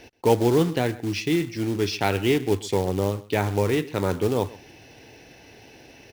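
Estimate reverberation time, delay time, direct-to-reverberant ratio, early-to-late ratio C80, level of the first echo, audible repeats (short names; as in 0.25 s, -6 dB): none, 0.129 s, none, none, -20.0 dB, 1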